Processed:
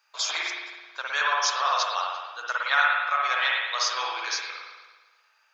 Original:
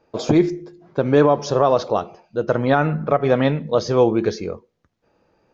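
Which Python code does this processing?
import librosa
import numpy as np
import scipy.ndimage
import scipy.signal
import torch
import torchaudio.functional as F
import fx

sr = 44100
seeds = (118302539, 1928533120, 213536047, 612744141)

y = scipy.signal.sosfilt(scipy.signal.butter(4, 1200.0, 'highpass', fs=sr, output='sos'), x)
y = fx.high_shelf(y, sr, hz=3600.0, db=10.0)
y = fx.rev_spring(y, sr, rt60_s=1.3, pass_ms=(54,), chirp_ms=65, drr_db=-3.0)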